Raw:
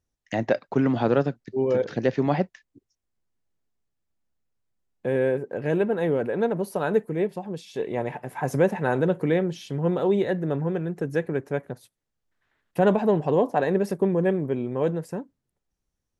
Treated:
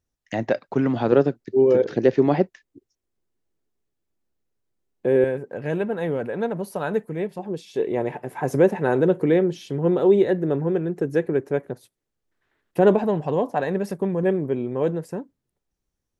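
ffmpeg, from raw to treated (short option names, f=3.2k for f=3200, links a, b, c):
-af "asetnsamples=n=441:p=0,asendcmd='1.12 equalizer g 9;5.24 equalizer g -3;7.39 equalizer g 7;13.04 equalizer g -3;14.23 equalizer g 3',equalizer=f=370:t=o:w=0.86:g=1"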